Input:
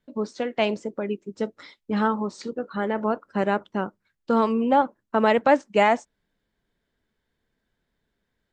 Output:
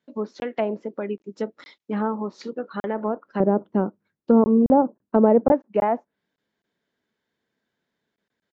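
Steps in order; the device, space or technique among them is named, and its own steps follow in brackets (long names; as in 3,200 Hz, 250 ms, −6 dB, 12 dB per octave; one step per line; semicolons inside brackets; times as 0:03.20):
call with lost packets (high-pass filter 170 Hz 12 dB per octave; downsampling to 16,000 Hz; dropped packets of 20 ms)
treble cut that deepens with the level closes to 880 Hz, closed at −20 dBFS
0:03.40–0:05.52: tilt shelving filter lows +9.5 dB, about 900 Hz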